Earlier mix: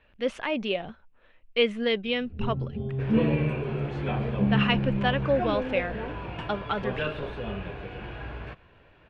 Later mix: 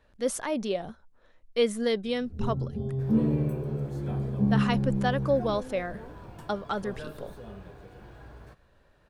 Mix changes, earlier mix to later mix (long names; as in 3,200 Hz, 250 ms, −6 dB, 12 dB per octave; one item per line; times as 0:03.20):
second sound −9.5 dB
master: remove low-pass with resonance 2,700 Hz, resonance Q 3.8